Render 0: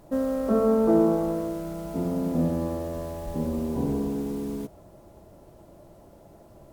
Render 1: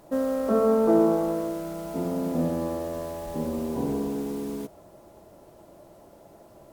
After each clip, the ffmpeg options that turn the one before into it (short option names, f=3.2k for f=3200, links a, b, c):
-af "lowshelf=f=180:g=-11,volume=2.5dB"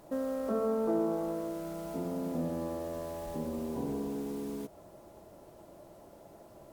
-af "acompressor=threshold=-38dB:ratio=1.5,volume=-2.5dB"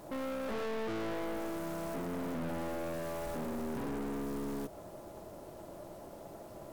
-af "aeval=exprs='(tanh(141*val(0)+0.45)-tanh(0.45))/141':c=same,volume=7dB"